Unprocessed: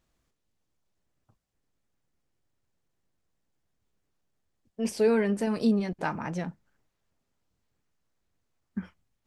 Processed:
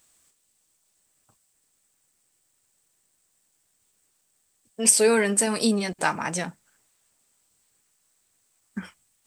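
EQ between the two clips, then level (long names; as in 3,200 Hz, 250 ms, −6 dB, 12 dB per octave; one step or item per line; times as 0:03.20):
spectral tilt +3 dB per octave
parametric band 8,200 Hz +14 dB 0.31 octaves
+7.0 dB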